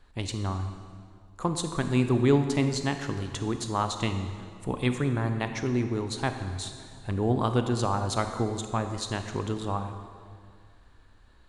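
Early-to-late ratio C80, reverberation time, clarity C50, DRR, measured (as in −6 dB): 9.0 dB, 2.0 s, 8.0 dB, 7.0 dB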